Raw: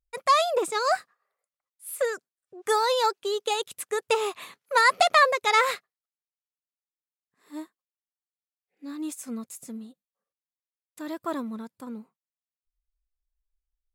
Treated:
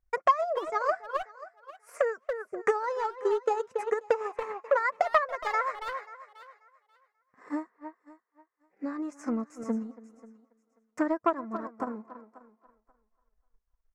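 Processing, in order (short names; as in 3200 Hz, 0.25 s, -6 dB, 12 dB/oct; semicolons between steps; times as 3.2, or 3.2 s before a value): EQ curve 290 Hz 0 dB, 550 Hz +5 dB, 1300 Hz +5 dB, 2000 Hz +2 dB, 3600 Hz -25 dB, 5700 Hz -4 dB, 12000 Hz -30 dB; speakerphone echo 0.28 s, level -11 dB; compressor 3:1, threshold -36 dBFS, peak gain reduction 18.5 dB; flange 0.17 Hz, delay 2.6 ms, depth 2.5 ms, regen +53%; on a send: thinning echo 0.536 s, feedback 19%, high-pass 350 Hz, level -15.5 dB; on the sum: transient shaper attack +7 dB, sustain -5 dB; core saturation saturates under 670 Hz; gain +8 dB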